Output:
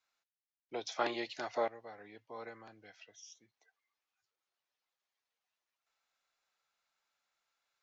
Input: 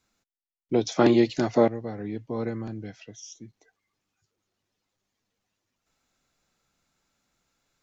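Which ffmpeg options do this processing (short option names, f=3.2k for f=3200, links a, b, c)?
-filter_complex "[0:a]acrossover=split=580 5700:gain=0.0708 1 0.251[a][b][c];[a][b][c]amix=inputs=3:normalize=0,volume=-6.5dB"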